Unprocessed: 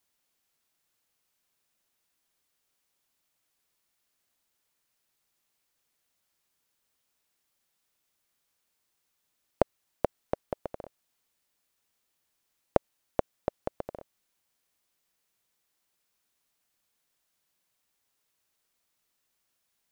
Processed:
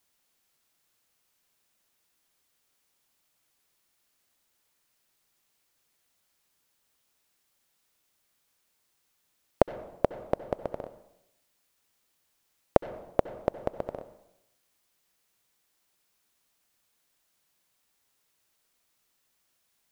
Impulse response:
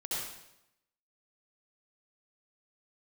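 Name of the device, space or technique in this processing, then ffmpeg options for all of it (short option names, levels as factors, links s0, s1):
saturated reverb return: -filter_complex "[0:a]asplit=2[s0][s1];[1:a]atrim=start_sample=2205[s2];[s1][s2]afir=irnorm=-1:irlink=0,asoftclip=type=tanh:threshold=0.0531,volume=0.2[s3];[s0][s3]amix=inputs=2:normalize=0,volume=1.41"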